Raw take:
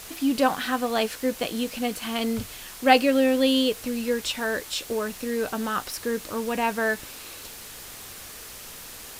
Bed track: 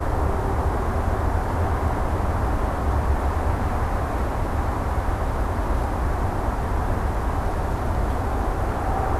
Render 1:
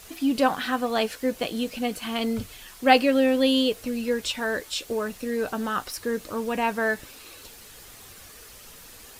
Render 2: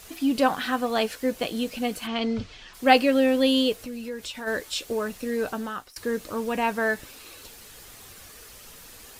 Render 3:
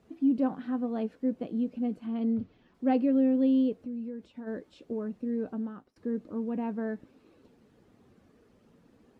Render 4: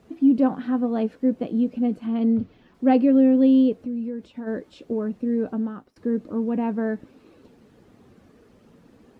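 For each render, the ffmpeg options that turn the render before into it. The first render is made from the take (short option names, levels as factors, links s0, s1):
-af "afftdn=nr=7:nf=-42"
-filter_complex "[0:a]asplit=3[s0][s1][s2];[s0]afade=t=out:st=2.06:d=0.02[s3];[s1]lowpass=f=5600:w=0.5412,lowpass=f=5600:w=1.3066,afade=t=in:st=2.06:d=0.02,afade=t=out:st=2.73:d=0.02[s4];[s2]afade=t=in:st=2.73:d=0.02[s5];[s3][s4][s5]amix=inputs=3:normalize=0,asplit=3[s6][s7][s8];[s6]afade=t=out:st=3.76:d=0.02[s9];[s7]acompressor=threshold=0.0141:ratio=2:attack=3.2:release=140:knee=1:detection=peak,afade=t=in:st=3.76:d=0.02,afade=t=out:st=4.46:d=0.02[s10];[s8]afade=t=in:st=4.46:d=0.02[s11];[s9][s10][s11]amix=inputs=3:normalize=0,asplit=2[s12][s13];[s12]atrim=end=5.96,asetpts=PTS-STARTPTS,afade=t=out:st=5.47:d=0.49:silence=0.0749894[s14];[s13]atrim=start=5.96,asetpts=PTS-STARTPTS,afade=t=in:d=0.004:c=hsin:silence=0.0749894[s15];[s14][s15]concat=n=2:v=0:a=1"
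-af "bandpass=f=230:t=q:w=1.6:csg=0"
-af "volume=2.51"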